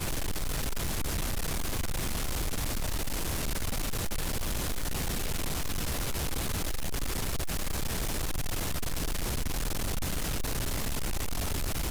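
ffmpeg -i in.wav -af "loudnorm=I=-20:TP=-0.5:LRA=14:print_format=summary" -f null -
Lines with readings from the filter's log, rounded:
Input Integrated:    -33.3 LUFS
Input True Peak:     -25.2 dBTP
Input LRA:             0.2 LU
Input Threshold:     -43.3 LUFS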